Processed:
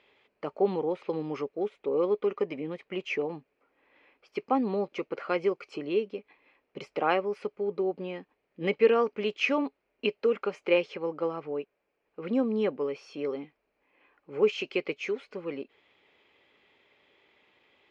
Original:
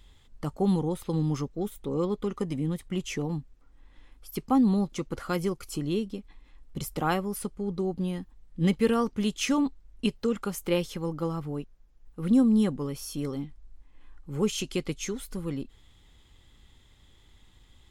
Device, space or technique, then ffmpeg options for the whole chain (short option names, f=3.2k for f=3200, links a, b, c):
phone earpiece: -af "highpass=380,equalizer=f=420:t=q:w=4:g=8,equalizer=f=600:t=q:w=4:g=7,equalizer=f=2.4k:t=q:w=4:g=10,equalizer=f=3.6k:t=q:w=4:g=-9,lowpass=f=4k:w=0.5412,lowpass=f=4k:w=1.3066"